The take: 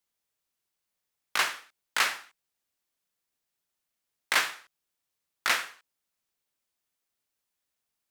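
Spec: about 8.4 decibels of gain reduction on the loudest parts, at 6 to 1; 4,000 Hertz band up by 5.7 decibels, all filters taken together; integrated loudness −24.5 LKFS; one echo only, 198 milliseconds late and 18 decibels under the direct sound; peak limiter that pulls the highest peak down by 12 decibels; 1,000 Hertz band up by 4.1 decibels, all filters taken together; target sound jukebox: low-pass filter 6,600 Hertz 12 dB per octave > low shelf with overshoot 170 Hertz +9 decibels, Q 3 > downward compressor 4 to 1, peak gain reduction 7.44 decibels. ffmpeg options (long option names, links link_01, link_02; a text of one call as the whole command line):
ffmpeg -i in.wav -af "equalizer=frequency=1000:width_type=o:gain=5,equalizer=frequency=4000:width_type=o:gain=7.5,acompressor=threshold=-25dB:ratio=6,alimiter=limit=-21dB:level=0:latency=1,lowpass=6600,lowshelf=frequency=170:width_type=q:width=3:gain=9,aecho=1:1:198:0.126,acompressor=threshold=-37dB:ratio=4,volume=18dB" out.wav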